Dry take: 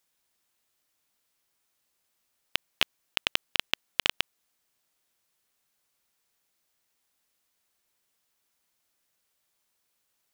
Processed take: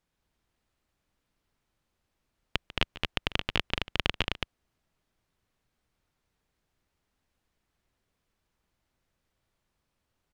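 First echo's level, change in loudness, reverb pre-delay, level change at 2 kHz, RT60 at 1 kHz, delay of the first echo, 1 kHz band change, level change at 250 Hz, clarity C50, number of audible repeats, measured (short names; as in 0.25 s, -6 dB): -17.5 dB, -2.5 dB, none, -1.5 dB, none, 0.145 s, +1.5 dB, +8.5 dB, none, 2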